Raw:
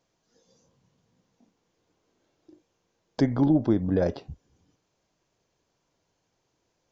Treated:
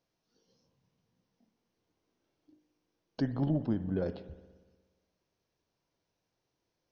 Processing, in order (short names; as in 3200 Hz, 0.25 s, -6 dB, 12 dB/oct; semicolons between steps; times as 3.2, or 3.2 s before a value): formant shift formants -2 st; spring tank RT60 1.4 s, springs 59 ms, chirp 75 ms, DRR 13 dB; gain -8.5 dB